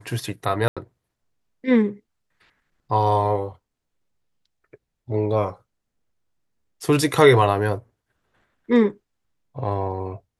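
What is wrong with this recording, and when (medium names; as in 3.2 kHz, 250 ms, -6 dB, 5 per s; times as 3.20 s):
0.68–0.77 s: dropout 86 ms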